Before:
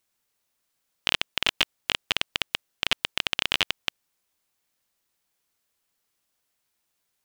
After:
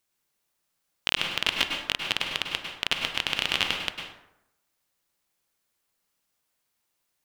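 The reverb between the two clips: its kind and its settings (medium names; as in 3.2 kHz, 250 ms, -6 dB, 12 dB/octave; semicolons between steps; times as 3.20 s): plate-style reverb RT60 0.84 s, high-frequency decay 0.55×, pre-delay 90 ms, DRR 2 dB; trim -2 dB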